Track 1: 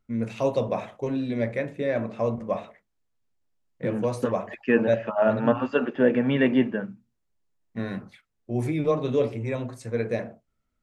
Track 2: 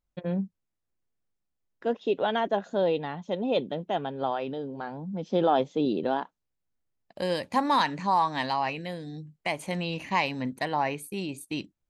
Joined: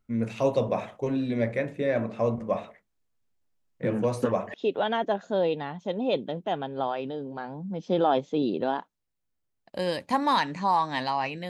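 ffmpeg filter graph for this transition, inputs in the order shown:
ffmpeg -i cue0.wav -i cue1.wav -filter_complex "[0:a]apad=whole_dur=11.49,atrim=end=11.49,atrim=end=4.542[link_01];[1:a]atrim=start=1.968:end=8.92[link_02];[link_01][link_02]acrossfade=duration=0.004:curve1=hsin:curve2=hsin" out.wav

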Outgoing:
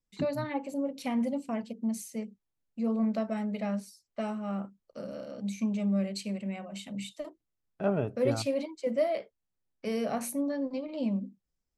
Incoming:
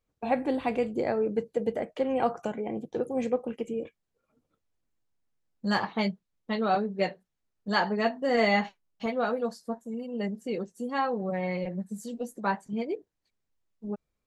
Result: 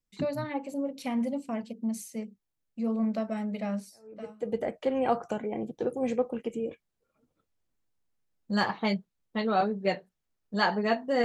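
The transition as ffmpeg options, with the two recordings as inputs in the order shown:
ffmpeg -i cue0.wav -i cue1.wav -filter_complex "[0:a]apad=whole_dur=11.24,atrim=end=11.24,atrim=end=4.61,asetpts=PTS-STARTPTS[link_01];[1:a]atrim=start=1.01:end=8.38,asetpts=PTS-STARTPTS[link_02];[link_01][link_02]acrossfade=duration=0.74:curve1=qua:curve2=qua" out.wav

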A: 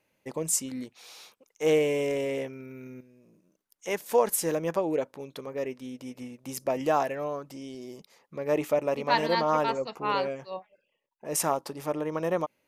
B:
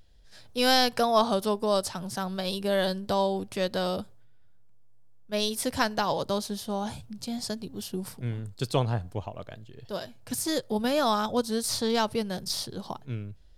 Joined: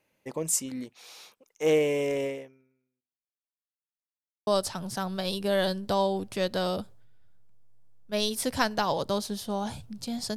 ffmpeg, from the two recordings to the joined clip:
ffmpeg -i cue0.wav -i cue1.wav -filter_complex "[0:a]apad=whole_dur=10.36,atrim=end=10.36,asplit=2[link_01][link_02];[link_01]atrim=end=3.84,asetpts=PTS-STARTPTS,afade=type=out:start_time=2.26:duration=1.58:curve=exp[link_03];[link_02]atrim=start=3.84:end=4.47,asetpts=PTS-STARTPTS,volume=0[link_04];[1:a]atrim=start=1.67:end=7.56,asetpts=PTS-STARTPTS,afade=type=in:duration=0.004:curve=hsin[link_05];[link_03][link_04][link_05]concat=n=3:v=0:a=1" out.wav

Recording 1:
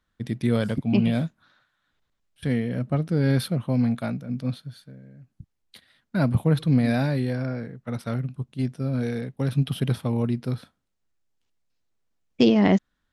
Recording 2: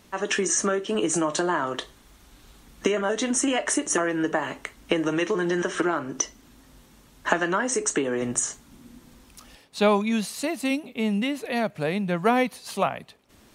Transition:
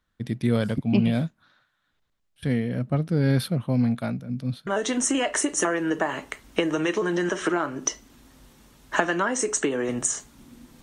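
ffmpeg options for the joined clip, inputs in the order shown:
ffmpeg -i cue0.wav -i cue1.wav -filter_complex "[0:a]asettb=1/sr,asplit=3[link_01][link_02][link_03];[link_01]atrim=end=4.194[link_04];[link_02]atrim=start=4.19:end=4.67,asetpts=PTS-STARTPTS,afade=type=in:duration=0.004:curve=qsin,afade=type=out:start_time=0.476:duration=0.004:curve=qsin,acrossover=split=320|3000[link_05][link_06][link_07];[link_06]acompressor=threshold=-45dB:ratio=2.5:attack=3.2:release=140:knee=2.83:detection=peak[link_08];[link_05][link_08][link_07]amix=inputs=3:normalize=0[link_09];[link_03]atrim=start=4.666[link_10];[link_04][link_09]acrossfade=duration=0.004:curve1=hsin:curve2=qsin[link_11];[link_11][link_10]acrossfade=duration=0.004:curve1=qsin:curve2=hsin,apad=whole_dur=10.82,atrim=end=10.82,atrim=end=4.672[link_12];[1:a]atrim=start=2.998:end=9.15[link_13];[link_12][link_13]acrossfade=duration=0.004:curve1=hsin:curve2=hsin" out.wav

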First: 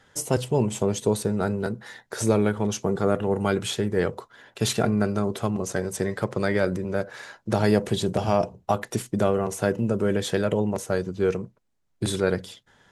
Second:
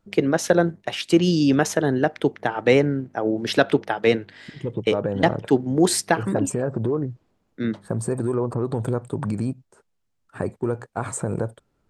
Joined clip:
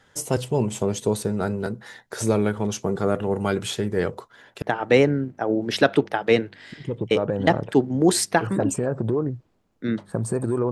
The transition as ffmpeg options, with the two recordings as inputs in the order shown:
ffmpeg -i cue0.wav -i cue1.wav -filter_complex "[0:a]apad=whole_dur=10.71,atrim=end=10.71,atrim=end=4.622[link_01];[1:a]atrim=start=2.378:end=8.47[link_02];[link_01][link_02]acrossfade=duration=0.004:curve1=hsin:curve2=hsin" out.wav

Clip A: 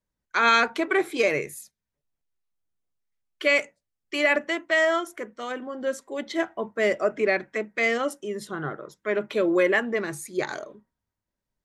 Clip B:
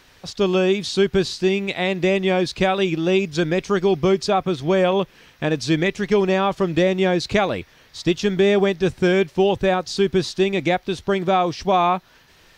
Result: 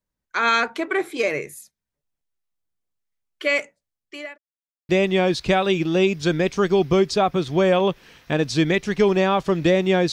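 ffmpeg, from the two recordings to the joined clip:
ffmpeg -i cue0.wav -i cue1.wav -filter_complex "[0:a]apad=whole_dur=10.12,atrim=end=10.12,asplit=2[link_01][link_02];[link_01]atrim=end=4.38,asetpts=PTS-STARTPTS,afade=type=out:start_time=3.82:duration=0.56[link_03];[link_02]atrim=start=4.38:end=4.89,asetpts=PTS-STARTPTS,volume=0[link_04];[1:a]atrim=start=2.01:end=7.24,asetpts=PTS-STARTPTS,afade=type=in:duration=0.004:curve=hsin[link_05];[link_03][link_04][link_05]concat=n=3:v=0:a=1" out.wav

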